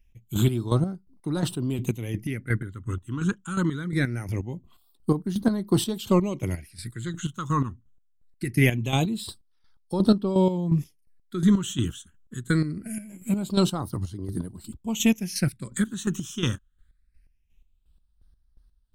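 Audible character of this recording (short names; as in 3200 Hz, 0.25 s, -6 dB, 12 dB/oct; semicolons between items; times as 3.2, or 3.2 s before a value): phasing stages 8, 0.23 Hz, lowest notch 630–2400 Hz; chopped level 2.8 Hz, depth 65%, duty 35%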